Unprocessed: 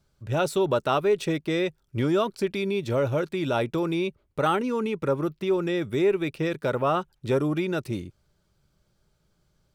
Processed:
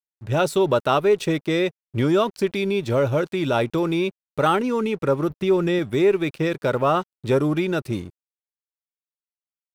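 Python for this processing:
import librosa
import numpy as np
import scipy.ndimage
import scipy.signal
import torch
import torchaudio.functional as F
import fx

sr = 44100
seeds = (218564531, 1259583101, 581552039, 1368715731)

y = fx.peak_eq(x, sr, hz=61.0, db=15.0, octaves=1.6, at=(5.3, 5.79))
y = np.sign(y) * np.maximum(np.abs(y) - 10.0 ** (-51.0 / 20.0), 0.0)
y = F.gain(torch.from_numpy(y), 4.5).numpy()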